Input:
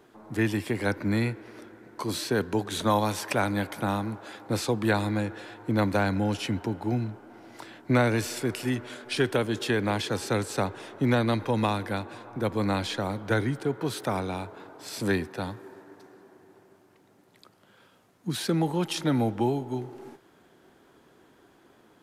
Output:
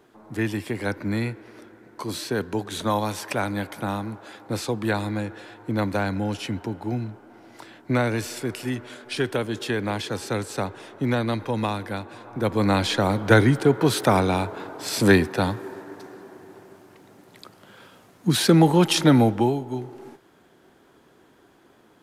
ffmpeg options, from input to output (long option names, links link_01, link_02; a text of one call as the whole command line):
ffmpeg -i in.wav -af "volume=10dB,afade=type=in:start_time=12.11:duration=1.24:silence=0.316228,afade=type=out:start_time=19.02:duration=0.56:silence=0.398107" out.wav